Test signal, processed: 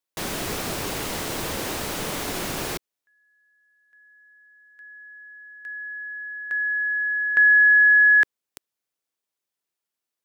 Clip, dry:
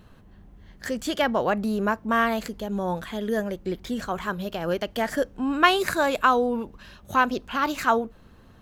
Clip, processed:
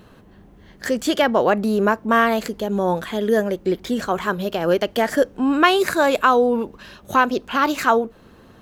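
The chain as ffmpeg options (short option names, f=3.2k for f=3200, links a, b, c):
-filter_complex "[0:a]lowshelf=f=84:g=-11,asplit=2[a][b];[b]alimiter=limit=-14.5dB:level=0:latency=1:release=382,volume=2dB[c];[a][c]amix=inputs=2:normalize=0,equalizer=f=400:w=1.3:g=4,volume=-1dB"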